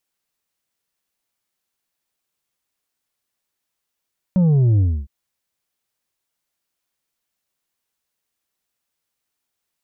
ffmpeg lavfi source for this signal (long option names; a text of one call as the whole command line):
ffmpeg -f lavfi -i "aevalsrc='0.237*clip((0.71-t)/0.28,0,1)*tanh(1.78*sin(2*PI*190*0.71/log(65/190)*(exp(log(65/190)*t/0.71)-1)))/tanh(1.78)':duration=0.71:sample_rate=44100" out.wav